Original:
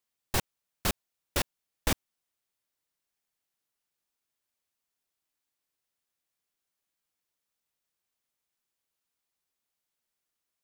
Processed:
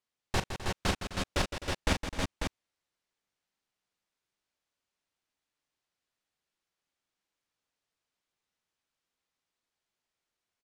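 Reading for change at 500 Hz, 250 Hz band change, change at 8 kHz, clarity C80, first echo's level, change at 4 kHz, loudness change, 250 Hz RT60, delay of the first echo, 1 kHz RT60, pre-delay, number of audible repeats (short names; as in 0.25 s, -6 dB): +2.5 dB, +3.0 dB, -4.0 dB, none, -12.5 dB, +1.0 dB, -0.5 dB, none, 40 ms, none, none, 5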